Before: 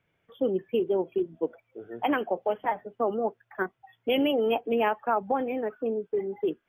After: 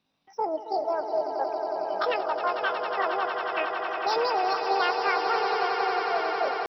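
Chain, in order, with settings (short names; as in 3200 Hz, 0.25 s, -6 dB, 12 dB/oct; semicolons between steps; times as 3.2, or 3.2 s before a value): pitch shift +9 st; swelling echo 91 ms, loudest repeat 8, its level -10 dB; gain -2 dB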